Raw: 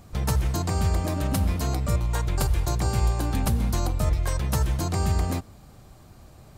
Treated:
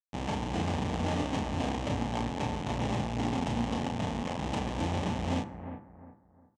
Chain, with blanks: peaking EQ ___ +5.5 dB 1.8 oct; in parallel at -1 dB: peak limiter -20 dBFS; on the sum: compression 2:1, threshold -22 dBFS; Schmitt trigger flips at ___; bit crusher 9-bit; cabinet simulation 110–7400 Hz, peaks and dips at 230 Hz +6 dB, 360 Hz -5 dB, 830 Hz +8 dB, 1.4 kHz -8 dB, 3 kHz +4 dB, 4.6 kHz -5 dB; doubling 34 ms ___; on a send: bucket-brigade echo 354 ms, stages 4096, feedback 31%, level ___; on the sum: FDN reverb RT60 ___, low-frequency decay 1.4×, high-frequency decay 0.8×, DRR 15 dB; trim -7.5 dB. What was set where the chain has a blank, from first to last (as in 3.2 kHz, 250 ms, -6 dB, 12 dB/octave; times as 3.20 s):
370 Hz, -26.5 dBFS, -4.5 dB, -10 dB, 0.66 s